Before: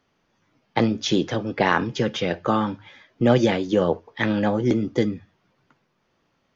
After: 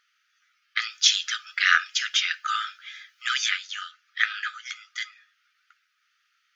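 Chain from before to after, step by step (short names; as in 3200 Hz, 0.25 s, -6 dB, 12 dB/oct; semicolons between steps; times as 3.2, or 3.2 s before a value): brick-wall FIR high-pass 1200 Hz; 0.8–3.49 high shelf 4200 Hz +10.5 dB; gain +4 dB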